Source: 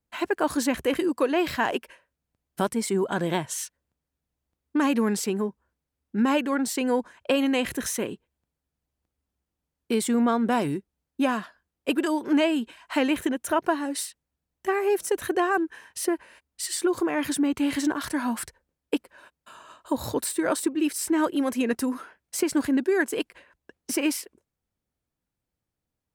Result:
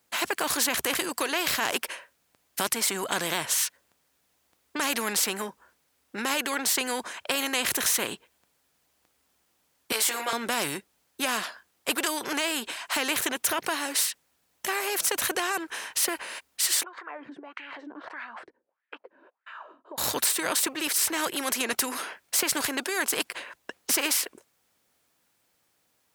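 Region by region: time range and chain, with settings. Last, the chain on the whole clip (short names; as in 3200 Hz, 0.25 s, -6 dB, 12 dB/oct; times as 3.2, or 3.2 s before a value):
9.92–10.33 HPF 500 Hz 24 dB/oct + notch 3700 Hz, Q 17 + doubler 18 ms -2.5 dB
16.83–19.98 LPF 3700 Hz + compressor, threshold -31 dBFS + wah 1.6 Hz 260–1900 Hz, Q 5.5
whole clip: HPF 920 Hz 6 dB/oct; maximiser +17.5 dB; spectral compressor 2:1; gain -8.5 dB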